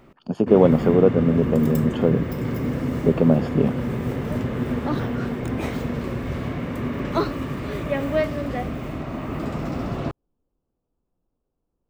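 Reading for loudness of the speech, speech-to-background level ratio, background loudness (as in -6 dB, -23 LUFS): -20.0 LUFS, 6.5 dB, -26.5 LUFS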